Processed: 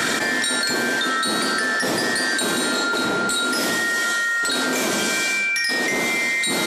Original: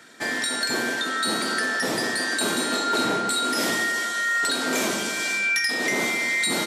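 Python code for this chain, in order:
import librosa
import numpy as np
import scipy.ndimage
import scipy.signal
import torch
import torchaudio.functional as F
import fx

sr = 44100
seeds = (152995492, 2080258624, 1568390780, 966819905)

y = fx.peak_eq(x, sr, hz=61.0, db=12.5, octaves=0.43)
y = fx.env_flatten(y, sr, amount_pct=100)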